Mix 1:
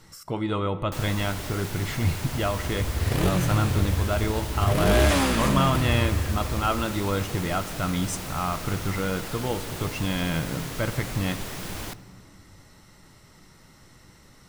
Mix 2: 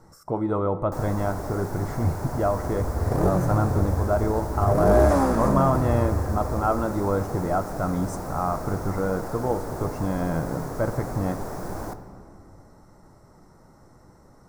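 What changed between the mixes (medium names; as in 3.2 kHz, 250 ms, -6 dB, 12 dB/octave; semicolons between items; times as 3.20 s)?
first sound: send +8.5 dB; master: add FFT filter 170 Hz 0 dB, 740 Hz +6 dB, 1.5 kHz -3 dB, 3 kHz -25 dB, 5.4 kHz -9 dB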